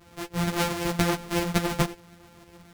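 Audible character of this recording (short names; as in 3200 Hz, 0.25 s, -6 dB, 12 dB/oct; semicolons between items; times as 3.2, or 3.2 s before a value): a buzz of ramps at a fixed pitch in blocks of 256 samples; tremolo saw up 7 Hz, depth 40%; a shimmering, thickened sound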